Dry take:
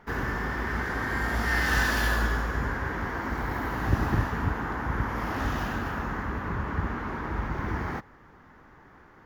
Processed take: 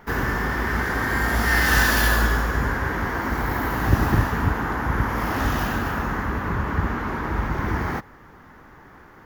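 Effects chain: treble shelf 10 kHz +11.5 dB; trim +6 dB

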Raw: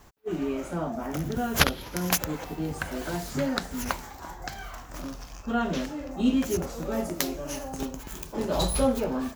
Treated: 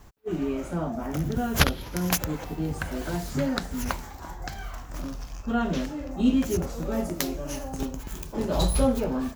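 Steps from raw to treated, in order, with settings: bass shelf 190 Hz +7.5 dB; trim -1 dB

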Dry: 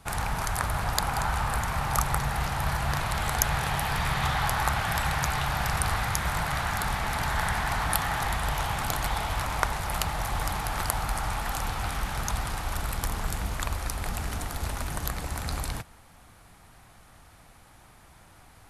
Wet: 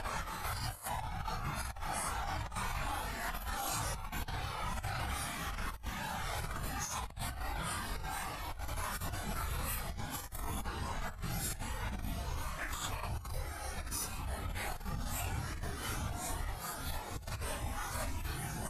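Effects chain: reverb removal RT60 1 s; Paulstretch 4.4×, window 0.05 s, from 10.72 s; compressor with a negative ratio -33 dBFS, ratio -0.5; trim -4.5 dB

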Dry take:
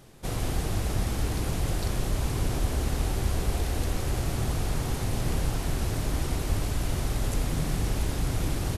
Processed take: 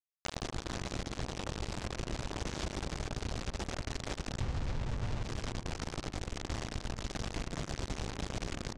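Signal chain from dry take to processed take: 4.40–5.23 s: tone controls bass +11 dB, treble -13 dB; de-hum 45.6 Hz, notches 5; bit crusher 4-bit; low-pass 6.9 kHz 24 dB/octave; filtered feedback delay 106 ms, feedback 66%, low-pass 1.2 kHz, level -11 dB; compression 5:1, threshold -38 dBFS, peak gain reduction 22 dB; trim +3 dB

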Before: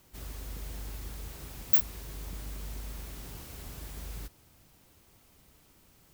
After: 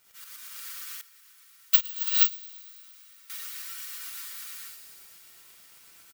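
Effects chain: comb filter that takes the minimum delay 2.1 ms; steep high-pass 1.1 kHz 96 dB/octave; treble shelf 11 kHz +3.5 dB; comb 5.9 ms, depth 68%; crackle 260 per s -49 dBFS; tremolo saw up 8.3 Hz, depth 60%; feedback echo behind a high-pass 113 ms, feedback 78%, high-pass 2.3 kHz, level -9.5 dB; gated-style reverb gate 500 ms rising, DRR -4.5 dB; 1.01–3.30 s: upward expansion 2.5:1, over -29 dBFS; trim +3.5 dB

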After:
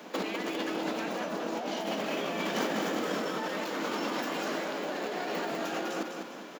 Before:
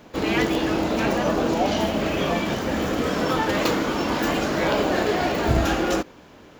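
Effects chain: steep high-pass 160 Hz 72 dB/octave; bass shelf 220 Hz -8 dB; compressor with a negative ratio -31 dBFS, ratio -1; on a send: feedback delay 200 ms, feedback 44%, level -6 dB; on the sum: trim -3.5 dB

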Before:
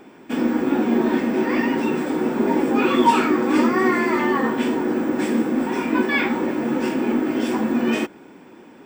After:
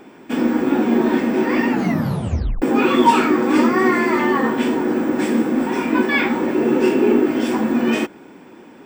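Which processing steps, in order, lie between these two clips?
1.67 s: tape stop 0.95 s; 6.54–7.26 s: small resonant body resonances 400/2700 Hz, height 12 dB; trim +2.5 dB

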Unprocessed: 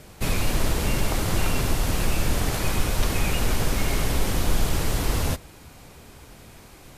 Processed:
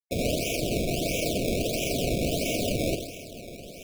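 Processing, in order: spectral gate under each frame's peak -25 dB weak; companded quantiser 2-bit; granular stretch 0.55×, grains 85 ms; echo that smears into a reverb 1021 ms, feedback 44%, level -16 dB; simulated room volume 1900 m³, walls mixed, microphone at 2 m; decimation with a swept rate 20×, swing 100% 1.5 Hz; brick-wall FIR band-stop 720–2200 Hz

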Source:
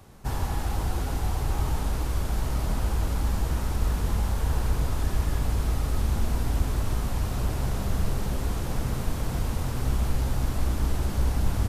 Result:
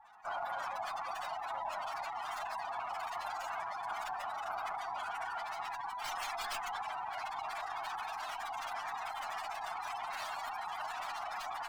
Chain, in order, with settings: frequency shift -280 Hz; Chebyshev high-pass 750 Hz, order 4; spectral gate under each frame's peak -10 dB strong; 6.04–6.82 s: treble shelf 3.5 kHz +10.5 dB; sliding maximum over 3 samples; trim +6.5 dB

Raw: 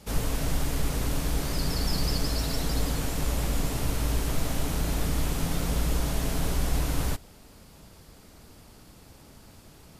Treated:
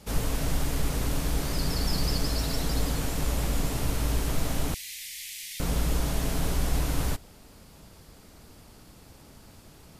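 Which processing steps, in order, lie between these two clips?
4.74–5.60 s: elliptic high-pass 2 kHz, stop band 40 dB

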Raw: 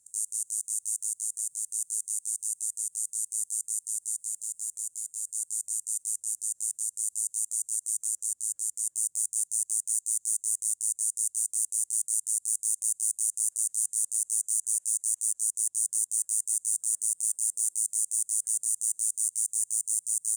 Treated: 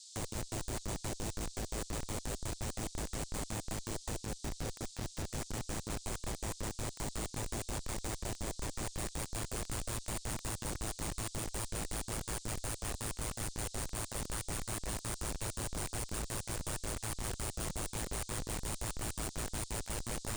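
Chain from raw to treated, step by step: spectrogram pixelated in time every 50 ms; Schmitt trigger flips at -26.5 dBFS; band noise 3.7–8.5 kHz -50 dBFS; trim -4.5 dB

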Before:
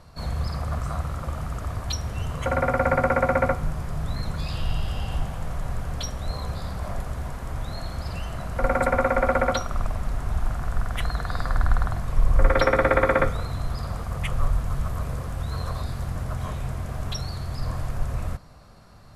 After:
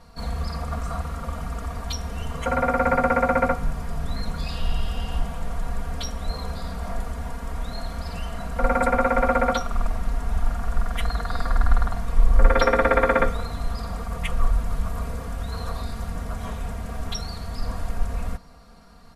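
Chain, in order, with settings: comb 4.3 ms, depth 96%; trim -2 dB

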